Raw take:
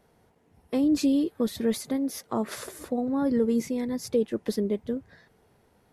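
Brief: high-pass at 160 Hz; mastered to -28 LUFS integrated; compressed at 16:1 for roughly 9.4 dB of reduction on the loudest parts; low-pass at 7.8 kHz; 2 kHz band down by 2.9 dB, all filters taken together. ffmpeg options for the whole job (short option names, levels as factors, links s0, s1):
-af "highpass=160,lowpass=7800,equalizer=f=2000:t=o:g=-3.5,acompressor=threshold=0.0355:ratio=16,volume=2.24"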